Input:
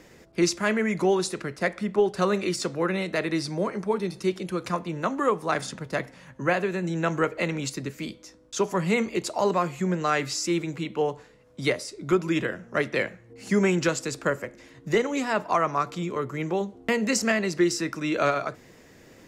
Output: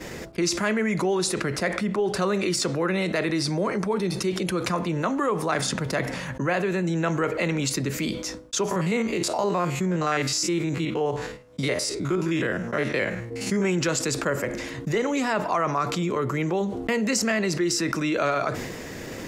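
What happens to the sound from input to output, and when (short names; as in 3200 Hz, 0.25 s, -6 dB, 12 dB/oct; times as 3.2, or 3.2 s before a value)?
8.71–13.65 stepped spectrum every 50 ms
whole clip: expander -41 dBFS; fast leveller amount 70%; gain -4.5 dB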